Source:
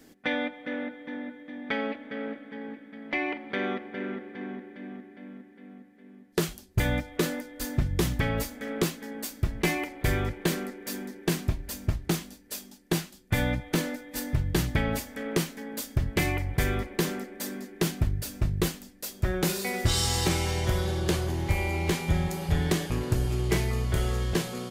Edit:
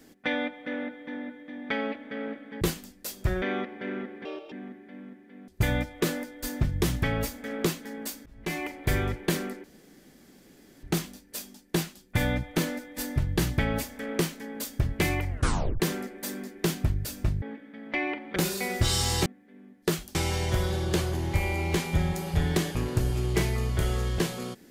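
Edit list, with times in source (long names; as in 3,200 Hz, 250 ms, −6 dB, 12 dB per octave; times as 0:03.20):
0:02.61–0:03.55: swap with 0:18.59–0:19.40
0:04.38–0:04.80: play speed 156%
0:05.76–0:06.65: move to 0:20.30
0:09.43–0:09.92: fade in
0:10.81–0:12.00: fill with room tone
0:16.47: tape stop 0.50 s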